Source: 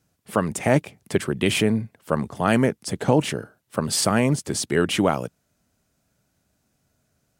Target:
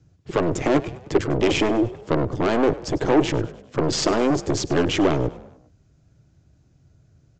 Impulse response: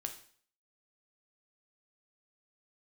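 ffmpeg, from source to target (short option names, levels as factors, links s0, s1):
-filter_complex "[0:a]acrossover=split=120|2500[s0][s1][s2];[s0]aeval=exprs='0.0794*sin(PI/2*7.94*val(0)/0.0794)':c=same[s3];[s3][s1][s2]amix=inputs=3:normalize=0,equalizer=f=160:t=o:w=1.5:g=13,aeval=exprs='1*(cos(1*acos(clip(val(0)/1,-1,1)))-cos(1*PI/2))+0.178*(cos(6*acos(clip(val(0)/1,-1,1)))-cos(6*PI/2))':c=same,aresample=16000,asoftclip=type=tanh:threshold=0.299,aresample=44100,lowshelf=f=260:t=q:w=3:g=-7,asplit=5[s4][s5][s6][s7][s8];[s5]adelay=100,afreqshift=45,volume=0.126[s9];[s6]adelay=200,afreqshift=90,volume=0.0631[s10];[s7]adelay=300,afreqshift=135,volume=0.0316[s11];[s8]adelay=400,afreqshift=180,volume=0.0157[s12];[s4][s9][s10][s11][s12]amix=inputs=5:normalize=0"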